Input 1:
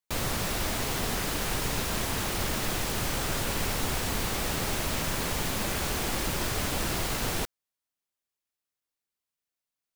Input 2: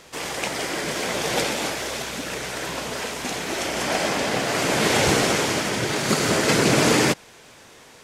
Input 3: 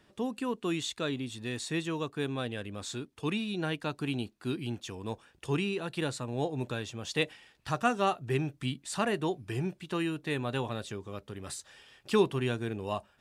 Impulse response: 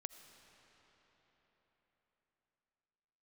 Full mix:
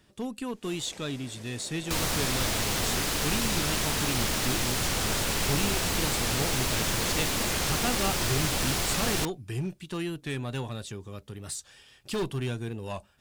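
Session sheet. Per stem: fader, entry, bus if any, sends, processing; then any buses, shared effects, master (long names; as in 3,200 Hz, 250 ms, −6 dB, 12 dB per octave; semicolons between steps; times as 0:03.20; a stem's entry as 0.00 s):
0.0 dB, 1.80 s, no send, high-shelf EQ 9,600 Hz −11.5 dB
−15.5 dB, 0.50 s, no send, tilt shelving filter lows +5 dB, about 740 Hz; automatic ducking −8 dB, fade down 1.05 s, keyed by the third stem
−3.0 dB, 0.00 s, no send, one-sided soft clipper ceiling −22.5 dBFS; low-shelf EQ 200 Hz +9.5 dB; hard clipping −22.5 dBFS, distortion −17 dB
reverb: not used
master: high-shelf EQ 3,500 Hz +10 dB; wow of a warped record 45 rpm, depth 100 cents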